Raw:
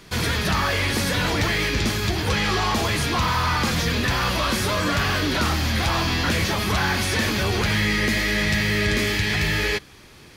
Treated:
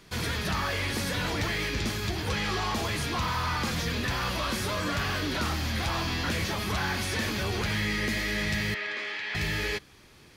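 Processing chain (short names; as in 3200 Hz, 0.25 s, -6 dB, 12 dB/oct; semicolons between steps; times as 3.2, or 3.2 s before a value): 8.74–9.35 BPF 680–3100 Hz; gain -7.5 dB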